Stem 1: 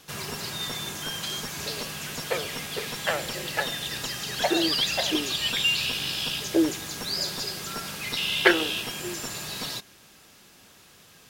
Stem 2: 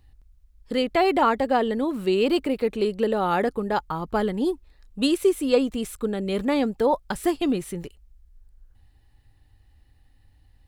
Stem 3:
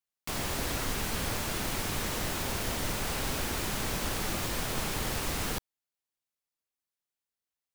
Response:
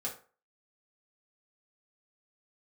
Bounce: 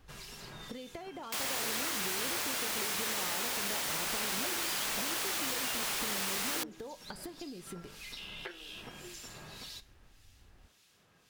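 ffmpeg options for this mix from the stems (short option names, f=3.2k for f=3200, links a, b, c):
-filter_complex "[0:a]highshelf=f=9.6k:g=-6,acrossover=split=2100[a][b];[a]aeval=exprs='val(0)*(1-0.7/2+0.7/2*cos(2*PI*1.8*n/s))':c=same[c];[b]aeval=exprs='val(0)*(1-0.7/2-0.7/2*cos(2*PI*1.8*n/s))':c=same[d];[c][d]amix=inputs=2:normalize=0,volume=-4.5dB[e];[1:a]acompressor=threshold=-27dB:ratio=10,volume=0.5dB[f];[2:a]highpass=f=1.2k:p=1,adelay=1050,volume=1.5dB[g];[e][f]amix=inputs=2:normalize=0,flanger=delay=7.7:depth=3.7:regen=-81:speed=0.21:shape=triangular,acompressor=threshold=-41dB:ratio=10,volume=0dB[h];[g][h]amix=inputs=2:normalize=0"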